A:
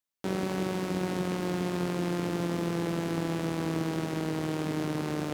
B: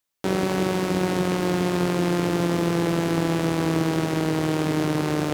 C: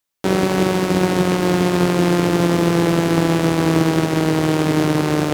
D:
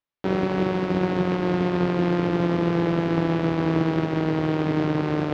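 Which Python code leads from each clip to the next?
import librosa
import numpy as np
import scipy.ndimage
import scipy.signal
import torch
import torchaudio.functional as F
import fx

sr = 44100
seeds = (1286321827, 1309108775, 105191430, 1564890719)

y1 = fx.peak_eq(x, sr, hz=220.0, db=-8.5, octaves=0.25)
y1 = y1 * 10.0 ** (8.5 / 20.0)
y2 = fx.upward_expand(y1, sr, threshold_db=-32.0, expansion=1.5)
y2 = y2 * 10.0 ** (7.5 / 20.0)
y3 = fx.air_absorb(y2, sr, metres=240.0)
y3 = y3 * 10.0 ** (-5.5 / 20.0)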